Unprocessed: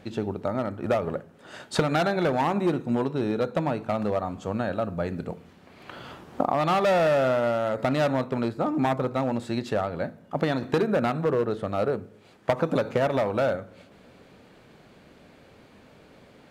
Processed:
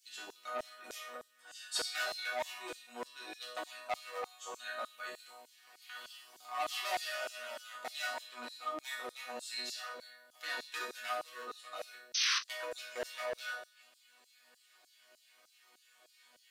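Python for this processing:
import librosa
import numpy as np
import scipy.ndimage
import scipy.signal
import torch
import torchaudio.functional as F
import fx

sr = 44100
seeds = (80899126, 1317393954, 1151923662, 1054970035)

p1 = fx.high_shelf(x, sr, hz=7800.0, db=6.0)
p2 = fx.rider(p1, sr, range_db=3, speed_s=2.0)
p3 = fx.high_shelf(p2, sr, hz=2500.0, db=11.5)
p4 = fx.resonator_bank(p3, sr, root=59, chord='major', decay_s=0.55)
p5 = fx.spec_paint(p4, sr, seeds[0], shape='noise', start_s=12.14, length_s=0.25, low_hz=1000.0, high_hz=6300.0, level_db=-41.0)
p6 = p5 + fx.room_early_taps(p5, sr, ms=(21, 53), db=(-9.5, -13.5), dry=0)
p7 = fx.filter_lfo_highpass(p6, sr, shape='saw_down', hz=3.3, low_hz=530.0, high_hz=6300.0, q=1.2)
p8 = fx.transformer_sat(p7, sr, knee_hz=2700.0)
y = F.gain(torch.from_numpy(p8), 9.0).numpy()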